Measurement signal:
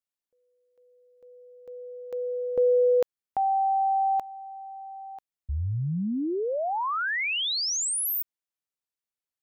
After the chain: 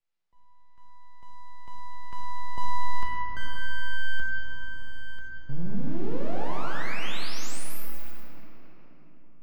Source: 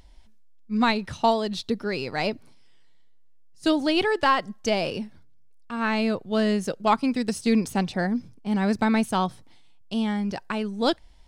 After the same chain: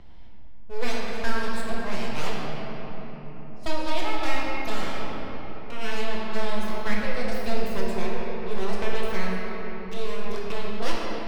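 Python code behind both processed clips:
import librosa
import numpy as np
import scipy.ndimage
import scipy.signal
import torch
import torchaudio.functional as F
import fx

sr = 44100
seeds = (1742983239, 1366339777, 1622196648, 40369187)

y = fx.env_lowpass(x, sr, base_hz=2800.0, full_db=-20.5)
y = np.abs(y)
y = fx.rider(y, sr, range_db=4, speed_s=2.0)
y = fx.room_shoebox(y, sr, seeds[0], volume_m3=180.0, walls='hard', distance_m=0.8)
y = fx.band_squash(y, sr, depth_pct=40)
y = F.gain(torch.from_numpy(y), -7.5).numpy()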